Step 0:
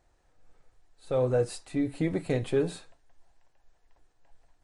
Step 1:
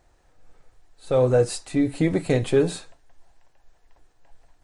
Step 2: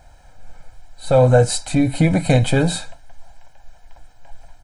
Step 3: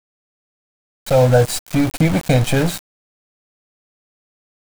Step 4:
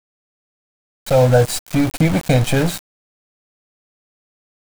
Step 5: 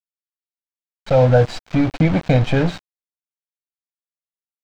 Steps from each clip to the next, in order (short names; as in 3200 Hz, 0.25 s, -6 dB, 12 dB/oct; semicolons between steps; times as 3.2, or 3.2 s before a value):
dynamic EQ 6700 Hz, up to +4 dB, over -58 dBFS, Q 1; gain +7 dB
comb 1.3 ms, depth 81%; in parallel at -2 dB: compressor, threshold -29 dBFS, peak gain reduction 14 dB; on the sum: gain +4.5 dB
sample gate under -21 dBFS
nothing audible
air absorption 190 m